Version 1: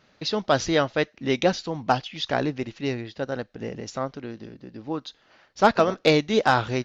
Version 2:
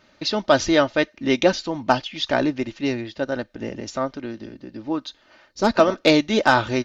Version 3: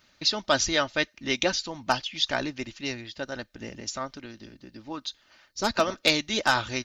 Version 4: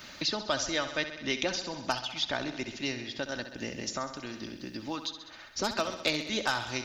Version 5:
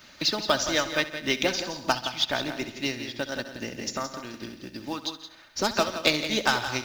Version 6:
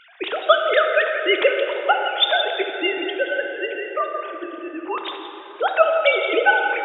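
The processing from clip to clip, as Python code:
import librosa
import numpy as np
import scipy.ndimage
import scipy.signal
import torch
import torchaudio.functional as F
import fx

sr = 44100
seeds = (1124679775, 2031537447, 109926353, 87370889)

y1 = fx.spec_box(x, sr, start_s=5.51, length_s=0.23, low_hz=530.0, high_hz=3700.0, gain_db=-8)
y1 = y1 + 0.46 * np.pad(y1, (int(3.3 * sr / 1000.0), 0))[:len(y1)]
y1 = F.gain(torch.from_numpy(y1), 3.0).numpy()
y2 = fx.peak_eq(y1, sr, hz=440.0, db=-8.0, octaves=2.5)
y2 = fx.hpss(y2, sr, part='harmonic', gain_db=-5)
y2 = fx.high_shelf(y2, sr, hz=6100.0, db=11.0)
y2 = F.gain(torch.from_numpy(y2), -1.5).numpy()
y3 = fx.echo_feedback(y2, sr, ms=65, feedback_pct=59, wet_db=-11.0)
y3 = fx.band_squash(y3, sr, depth_pct=70)
y3 = F.gain(torch.from_numpy(y3), -5.5).numpy()
y4 = y3 + 10.0 ** (-7.5 / 20.0) * np.pad(y3, (int(170 * sr / 1000.0), 0))[:len(y3)]
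y4 = fx.quant_companded(y4, sr, bits=6)
y4 = fx.upward_expand(y4, sr, threshold_db=-49.0, expansion=1.5)
y4 = F.gain(torch.from_numpy(y4), 7.0).numpy()
y5 = fx.sine_speech(y4, sr)
y5 = fx.rev_plate(y5, sr, seeds[0], rt60_s=3.9, hf_ratio=0.55, predelay_ms=0, drr_db=4.0)
y5 = F.gain(torch.from_numpy(y5), 6.5).numpy()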